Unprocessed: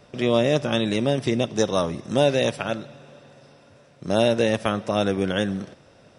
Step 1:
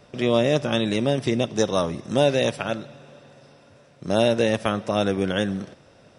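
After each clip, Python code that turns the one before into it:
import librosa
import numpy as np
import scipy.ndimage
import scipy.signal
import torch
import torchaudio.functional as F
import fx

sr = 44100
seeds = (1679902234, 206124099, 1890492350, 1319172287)

y = x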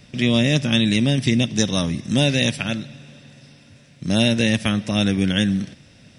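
y = fx.band_shelf(x, sr, hz=710.0, db=-13.0, octaves=2.3)
y = F.gain(torch.from_numpy(y), 7.5).numpy()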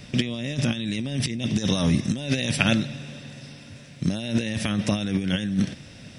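y = fx.over_compress(x, sr, threshold_db=-23.0, ratio=-0.5)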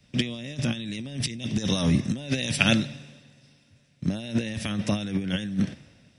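y = fx.band_widen(x, sr, depth_pct=70)
y = F.gain(torch.from_numpy(y), -2.5).numpy()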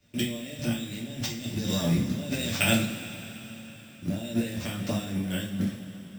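y = np.repeat(x[::4], 4)[:len(x)]
y = fx.rev_double_slope(y, sr, seeds[0], early_s=0.35, late_s=4.4, knee_db=-18, drr_db=-4.0)
y = F.gain(torch.from_numpy(y), -7.5).numpy()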